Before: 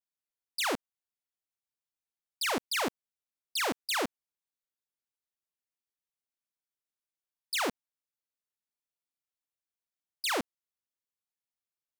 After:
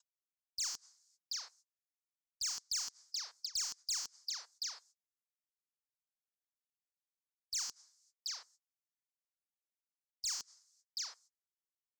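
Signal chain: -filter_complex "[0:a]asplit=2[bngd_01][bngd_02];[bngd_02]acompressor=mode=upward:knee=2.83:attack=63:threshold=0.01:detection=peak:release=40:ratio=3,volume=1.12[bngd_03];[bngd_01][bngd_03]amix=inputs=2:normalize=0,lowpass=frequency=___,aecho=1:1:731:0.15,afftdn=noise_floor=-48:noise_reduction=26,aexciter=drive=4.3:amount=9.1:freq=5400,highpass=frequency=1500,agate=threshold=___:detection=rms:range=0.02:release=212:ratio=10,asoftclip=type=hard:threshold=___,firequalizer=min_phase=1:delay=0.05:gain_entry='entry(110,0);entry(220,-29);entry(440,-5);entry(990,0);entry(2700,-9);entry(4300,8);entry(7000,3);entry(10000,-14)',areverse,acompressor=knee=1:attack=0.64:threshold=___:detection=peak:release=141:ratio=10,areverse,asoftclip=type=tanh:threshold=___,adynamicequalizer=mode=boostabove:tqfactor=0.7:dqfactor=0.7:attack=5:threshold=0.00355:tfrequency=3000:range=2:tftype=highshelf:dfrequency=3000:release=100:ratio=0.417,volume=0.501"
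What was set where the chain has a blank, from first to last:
7000, 0.00251, 0.335, 0.0447, 0.0398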